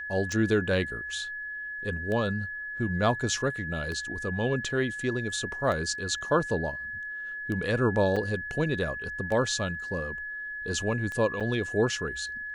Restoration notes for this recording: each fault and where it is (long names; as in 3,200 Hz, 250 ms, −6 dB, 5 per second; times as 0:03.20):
scratch tick 33 1/3 rpm −22 dBFS
whistle 1,700 Hz −34 dBFS
0:08.16–0:08.17: drop-out 5.3 ms
0:11.40–0:11.41: drop-out 7 ms